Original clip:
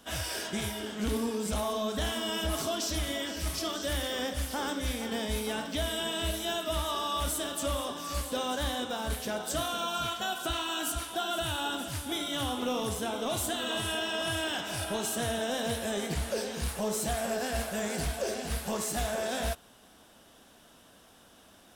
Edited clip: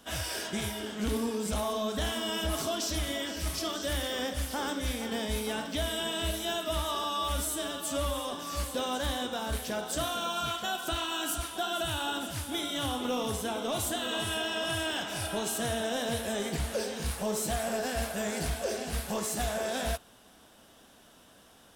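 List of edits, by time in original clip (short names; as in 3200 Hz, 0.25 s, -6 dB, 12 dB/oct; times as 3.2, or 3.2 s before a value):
7.04–7.89 stretch 1.5×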